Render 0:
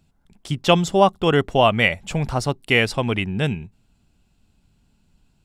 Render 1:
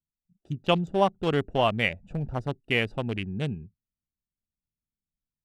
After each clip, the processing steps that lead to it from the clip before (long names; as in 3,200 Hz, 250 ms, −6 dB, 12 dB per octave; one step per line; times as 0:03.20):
adaptive Wiener filter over 41 samples
noise reduction from a noise print of the clip's start 26 dB
level −7 dB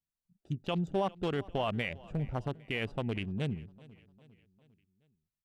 brickwall limiter −19 dBFS, peak gain reduction 10 dB
repeating echo 402 ms, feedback 51%, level −22 dB
level −3 dB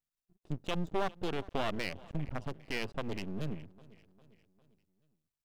half-wave rectification
level +2.5 dB